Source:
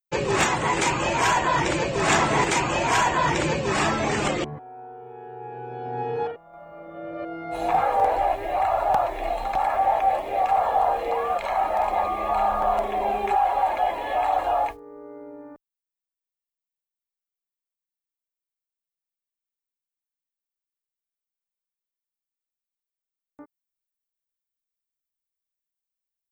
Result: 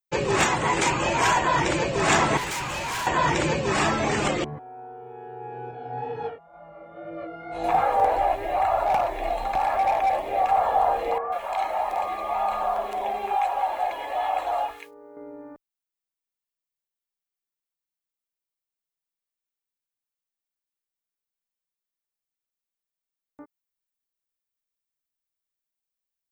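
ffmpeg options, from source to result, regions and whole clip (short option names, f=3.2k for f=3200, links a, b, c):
-filter_complex "[0:a]asettb=1/sr,asplit=3[a][b][c];[a]atrim=end=2.374[d];[b]atrim=start=2.37:end=3.07,asetpts=PTS-STARTPTS,afade=t=in:d=0.004:c=qsin,afade=t=out:st=0.696:d=0.004:c=qsin,equalizer=f=340:t=o:w=1.7:g=-9,bandreject=f=690:w=13,asoftclip=type=hard:threshold=-27.5dB[e];[c]atrim=start=3.066[f];[d][e]acrossfade=d=0.004:c1=hsin:c2=qsin[g];[g][f]acrossfade=d=0.004:c1=qsin:c2=hsin,asettb=1/sr,asplit=3[h][i][j];[h]atrim=end=5.714[k];[i]atrim=start=5.71:end=7.64,asetpts=PTS-STARTPTS,afade=t=in:d=0.004:c=qsin,afade=t=out:st=1.926:d=0.004:c=qsin,lowpass=6.7k,flanger=delay=18:depth=5:speed=2.1,bandreject=f=370:w=9.1[l];[j]atrim=start=7.636[m];[k][l]acrossfade=d=0.004:c1=hsin:c2=qsin[n];[n][m]acrossfade=d=0.004:c1=qsin:c2=hsin,asettb=1/sr,asplit=3[o][p][q];[o]atrim=end=8.864[r];[p]atrim=start=8.86:end=10.24,asetpts=PTS-STARTPTS,afade=t=in:d=0.004:c=qsin,afade=t=out:st=1.376:d=0.004:c=qsin,bandreject=f=1.3k:w=26,volume=17.5dB,asoftclip=hard,volume=-17.5dB[s];[q]atrim=start=10.236[t];[r][s]acrossfade=d=0.004:c1=hsin:c2=qsin[u];[u][t]acrossfade=d=0.004:c1=qsin:c2=hsin,asettb=1/sr,asplit=3[v][w][x];[v]atrim=end=11.184[y];[w]atrim=start=11.18:end=15.17,asetpts=PTS-STARTPTS,afade=t=in:d=0.004:c=qsin,afade=t=out:st=3.986:d=0.004:c=qsin,lowshelf=f=410:g=-11.5,acrossover=split=1600[z][aa];[aa]adelay=140[ab];[z][ab]amix=inputs=2:normalize=0,atrim=end_sample=175959[ac];[x]atrim=start=15.166[ad];[y][ac]acrossfade=d=0.004:c1=hsin:c2=qsin[ae];[ae][ad]acrossfade=d=0.004:c1=qsin:c2=hsin"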